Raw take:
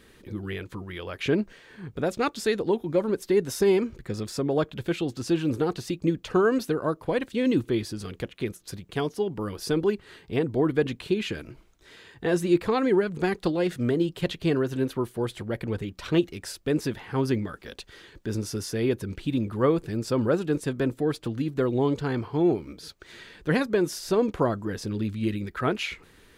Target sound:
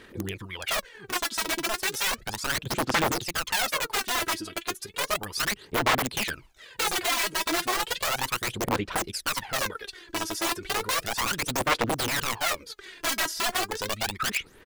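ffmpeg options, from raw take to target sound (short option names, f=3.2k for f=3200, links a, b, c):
-af "aeval=exprs='(mod(14.1*val(0)+1,2)-1)/14.1':c=same,lowshelf=f=380:g=-11,atempo=1.8,aphaser=in_gain=1:out_gain=1:delay=3.1:decay=0.68:speed=0.34:type=sinusoidal,volume=1.5dB"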